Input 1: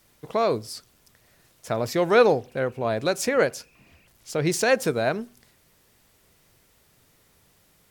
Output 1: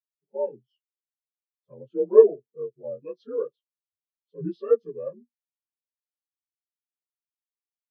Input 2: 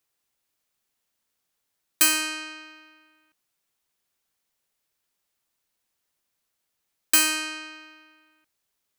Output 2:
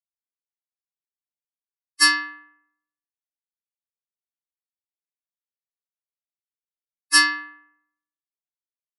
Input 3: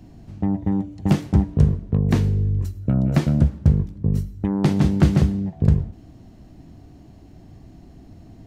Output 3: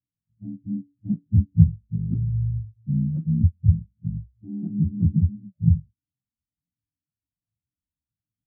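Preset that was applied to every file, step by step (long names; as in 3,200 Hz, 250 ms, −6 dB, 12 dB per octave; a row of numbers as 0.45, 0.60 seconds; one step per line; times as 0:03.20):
partials spread apart or drawn together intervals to 84%
every bin expanded away from the loudest bin 2.5 to 1
normalise the peak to −2 dBFS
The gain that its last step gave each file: +5.5, +3.0, +3.5 decibels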